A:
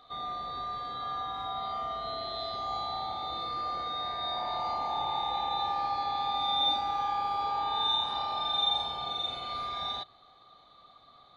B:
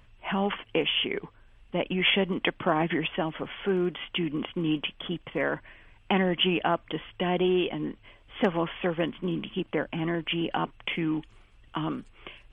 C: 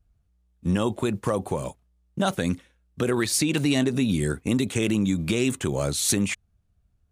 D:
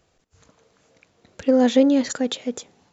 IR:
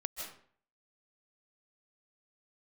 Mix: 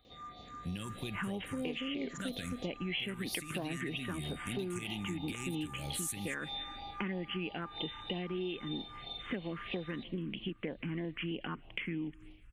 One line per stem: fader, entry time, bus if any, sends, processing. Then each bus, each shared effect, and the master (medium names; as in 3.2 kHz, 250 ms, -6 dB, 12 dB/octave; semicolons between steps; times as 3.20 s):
-6.5 dB, 0.00 s, no send, none
-1.5 dB, 0.90 s, send -23.5 dB, none
+2.0 dB, 0.00 s, send -11.5 dB, amplifier tone stack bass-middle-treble 5-5-5
-13.0 dB, 0.05 s, no send, spectral levelling over time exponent 0.6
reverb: on, RT60 0.50 s, pre-delay 115 ms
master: phase shifter stages 4, 3.1 Hz, lowest notch 660–1400 Hz; compression, threshold -35 dBFS, peak gain reduction 14 dB